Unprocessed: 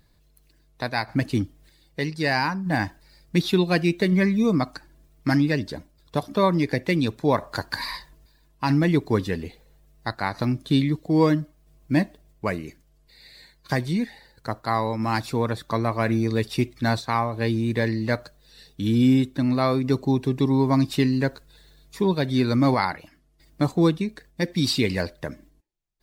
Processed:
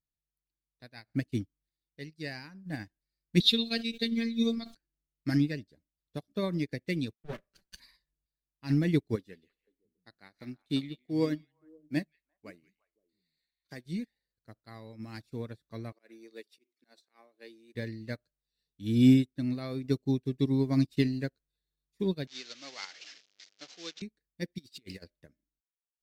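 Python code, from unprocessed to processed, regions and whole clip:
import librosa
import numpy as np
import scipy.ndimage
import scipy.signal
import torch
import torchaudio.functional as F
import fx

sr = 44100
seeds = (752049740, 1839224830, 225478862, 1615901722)

y = fx.chain(x, sr, fx.peak_eq(hz=3800.0, db=15.0, octaves=0.61),
    fx.robotise(hz=230.0),
    fx.sustainer(db_per_s=67.0), at=(3.4, 4.75))
y = fx.chain(y, sr, fx.lower_of_two(delay_ms=5.2),
    fx.band_widen(depth_pct=70), at=(7.13, 7.8))
y = fx.chain(y, sr, fx.peak_eq(hz=82.0, db=-12.0, octaves=1.6),
    fx.echo_stepped(ms=173, hz=2700.0, octaves=-1.4, feedback_pct=70, wet_db=-4), at=(9.15, 13.86))
y = fx.chain(y, sr, fx.highpass(hz=320.0, slope=24),
    fx.auto_swell(attack_ms=119.0), at=(15.92, 17.75))
y = fx.chain(y, sr, fx.delta_mod(bps=32000, step_db=-24.5),
    fx.highpass(hz=650.0, slope=12),
    fx.high_shelf(hz=2500.0, db=10.0), at=(22.27, 24.02))
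y = fx.chain(y, sr, fx.bass_treble(bass_db=-6, treble_db=4),
    fx.over_compress(threshold_db=-28.0, ratio=-0.5),
    fx.backlash(play_db=-42.5), at=(24.58, 25.04))
y = fx.peak_eq(y, sr, hz=950.0, db=-14.0, octaves=1.0)
y = fx.upward_expand(y, sr, threshold_db=-39.0, expansion=2.5)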